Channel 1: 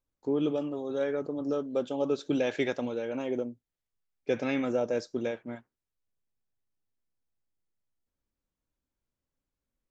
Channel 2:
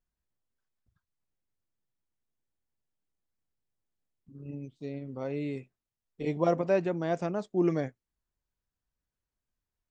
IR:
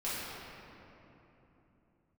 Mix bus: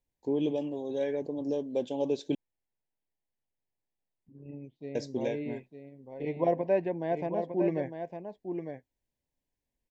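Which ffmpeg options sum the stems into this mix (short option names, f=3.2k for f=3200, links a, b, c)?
-filter_complex "[0:a]volume=-1dB,asplit=3[a][b][c];[a]atrim=end=2.35,asetpts=PTS-STARTPTS,afade=t=out:st=2.346:d=0.004:c=hsin[d];[b]atrim=start=2.35:end=4.95,asetpts=PTS-STARTPTS,volume=0[e];[c]atrim=start=4.95,asetpts=PTS-STARTPTS,afade=t=in:d=0.004:c=hsin[f];[d][e][f]concat=n=3:v=0:a=1[g];[1:a]lowpass=1.9k,lowshelf=f=360:g=-9,volume=2.5dB,asplit=2[h][i];[i]volume=-7.5dB,aecho=0:1:905:1[j];[g][h][j]amix=inputs=3:normalize=0,asuperstop=centerf=1300:order=4:qfactor=1.8"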